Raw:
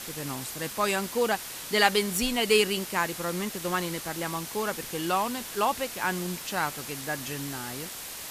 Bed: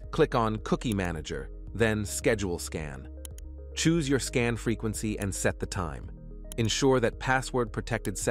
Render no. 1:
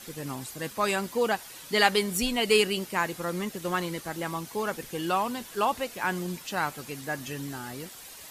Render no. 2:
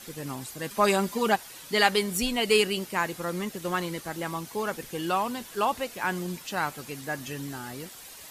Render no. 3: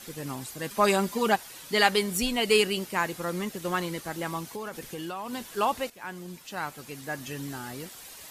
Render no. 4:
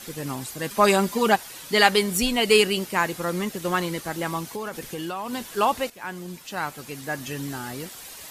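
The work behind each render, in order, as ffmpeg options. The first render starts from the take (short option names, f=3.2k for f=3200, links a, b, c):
-af "afftdn=nr=9:nf=-40"
-filter_complex "[0:a]asettb=1/sr,asplit=3[a][b][c];[a]atrim=end=0.704[d];[b]atrim=start=0.7:end=1.36,asetpts=PTS-STARTPTS,afade=t=in:d=0.004:c=qsin,afade=t=out:st=0.656:d=0.004:c=qsin,aecho=1:1:5:0.96,atrim=end_sample=29106[e];[c]atrim=start=1.356[f];[d][e]acrossfade=d=0.004:c1=hsin:c2=qsin[g];[g][f]acrossfade=d=0.004:c1=qsin:c2=hsin"
-filter_complex "[0:a]asettb=1/sr,asplit=3[a][b][c];[a]atrim=end=4.494[d];[b]atrim=start=4.49:end=5.33,asetpts=PTS-STARTPTS,afade=t=in:d=0.004:c=qsin,afade=t=out:st=0.836:d=0.004:c=qsin,acompressor=threshold=-32dB:ratio=6:attack=3.2:release=140:knee=1:detection=peak[e];[c]atrim=start=5.326[f];[d][e]acrossfade=d=0.004:c1=hsin:c2=qsin[g];[g][f]acrossfade=d=0.004:c1=qsin:c2=hsin,asplit=2[h][i];[h]atrim=end=5.9,asetpts=PTS-STARTPTS,afade=t=out:st=5.896:d=0.004:c=hsin:silence=0.237137[j];[i]atrim=start=5.9,asetpts=PTS-STARTPTS,afade=t=in:d=1.6:silence=0.237137[k];[j][k]concat=n=2:v=0:a=1"
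-af "volume=4.5dB"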